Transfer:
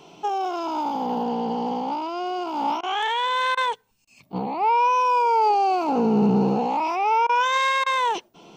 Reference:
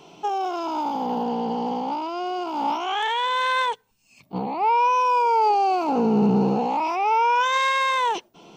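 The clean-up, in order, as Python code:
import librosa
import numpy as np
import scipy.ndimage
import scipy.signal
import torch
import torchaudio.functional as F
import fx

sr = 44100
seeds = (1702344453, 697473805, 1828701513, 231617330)

y = fx.fix_interpolate(x, sr, at_s=(2.81, 3.55, 4.05, 7.27, 7.84), length_ms=21.0)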